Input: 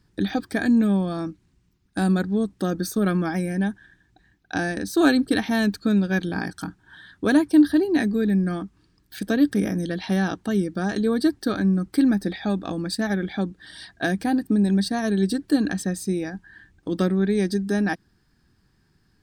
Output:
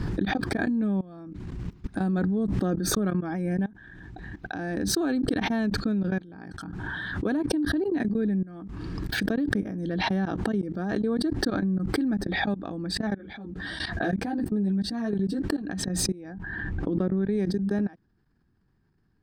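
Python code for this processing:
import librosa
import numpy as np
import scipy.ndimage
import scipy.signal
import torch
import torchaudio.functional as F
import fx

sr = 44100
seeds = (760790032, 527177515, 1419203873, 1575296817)

y = fx.env_flatten(x, sr, amount_pct=50, at=(2.12, 2.76), fade=0.02)
y = fx.ensemble(y, sr, at=(13.18, 15.64))
y = fx.high_shelf(y, sr, hz=3400.0, db=-11.0, at=(16.34, 17.14))
y = fx.level_steps(y, sr, step_db=22)
y = fx.lowpass(y, sr, hz=1100.0, slope=6)
y = fx.pre_swell(y, sr, db_per_s=21.0)
y = y * 10.0 ** (-2.5 / 20.0)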